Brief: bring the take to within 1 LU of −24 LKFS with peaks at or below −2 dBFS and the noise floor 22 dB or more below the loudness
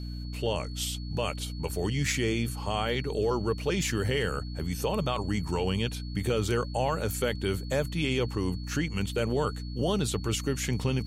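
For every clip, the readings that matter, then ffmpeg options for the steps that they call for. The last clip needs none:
mains hum 60 Hz; hum harmonics up to 300 Hz; level of the hum −34 dBFS; interfering tone 4,400 Hz; level of the tone −48 dBFS; integrated loudness −30.0 LKFS; sample peak −14.5 dBFS; target loudness −24.0 LKFS
→ -af "bandreject=frequency=60:width_type=h:width=6,bandreject=frequency=120:width_type=h:width=6,bandreject=frequency=180:width_type=h:width=6,bandreject=frequency=240:width_type=h:width=6,bandreject=frequency=300:width_type=h:width=6"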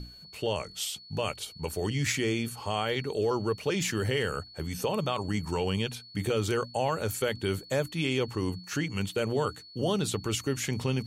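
mains hum none found; interfering tone 4,400 Hz; level of the tone −48 dBFS
→ -af "bandreject=frequency=4400:width=30"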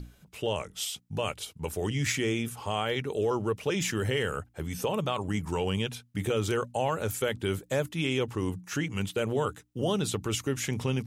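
interfering tone none found; integrated loudness −31.0 LKFS; sample peak −15.5 dBFS; target loudness −24.0 LKFS
→ -af "volume=7dB"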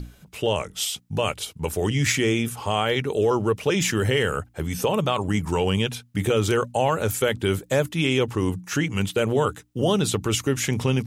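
integrated loudness −24.0 LKFS; sample peak −8.5 dBFS; background noise floor −54 dBFS

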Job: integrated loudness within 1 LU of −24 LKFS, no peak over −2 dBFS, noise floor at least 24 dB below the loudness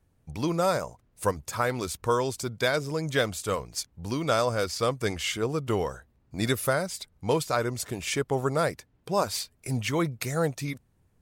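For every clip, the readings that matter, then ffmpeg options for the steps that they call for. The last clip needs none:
integrated loudness −28.5 LKFS; sample peak −11.0 dBFS; target loudness −24.0 LKFS
→ -af "volume=4.5dB"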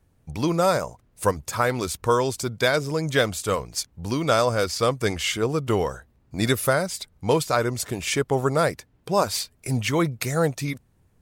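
integrated loudness −24.0 LKFS; sample peak −6.5 dBFS; background noise floor −63 dBFS

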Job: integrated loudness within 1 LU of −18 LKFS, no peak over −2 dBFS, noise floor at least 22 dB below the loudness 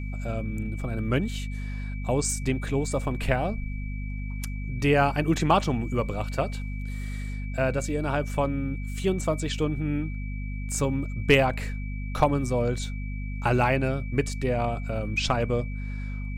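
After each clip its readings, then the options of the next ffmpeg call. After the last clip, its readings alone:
mains hum 50 Hz; hum harmonics up to 250 Hz; level of the hum −30 dBFS; interfering tone 2,300 Hz; level of the tone −44 dBFS; integrated loudness −27.5 LKFS; sample peak −7.5 dBFS; target loudness −18.0 LKFS
→ -af "bandreject=frequency=50:width_type=h:width=6,bandreject=frequency=100:width_type=h:width=6,bandreject=frequency=150:width_type=h:width=6,bandreject=frequency=200:width_type=h:width=6,bandreject=frequency=250:width_type=h:width=6"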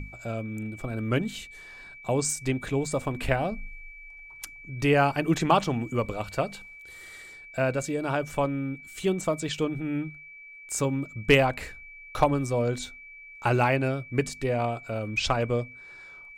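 mains hum none found; interfering tone 2,300 Hz; level of the tone −44 dBFS
→ -af "bandreject=frequency=2300:width=30"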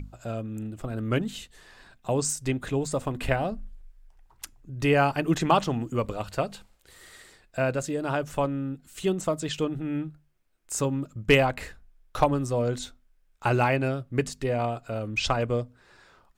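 interfering tone none found; integrated loudness −27.5 LKFS; sample peak −6.5 dBFS; target loudness −18.0 LKFS
→ -af "volume=9.5dB,alimiter=limit=-2dB:level=0:latency=1"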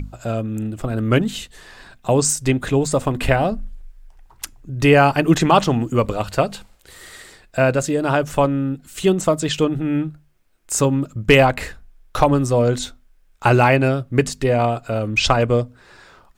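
integrated loudness −18.5 LKFS; sample peak −2.0 dBFS; background noise floor −54 dBFS

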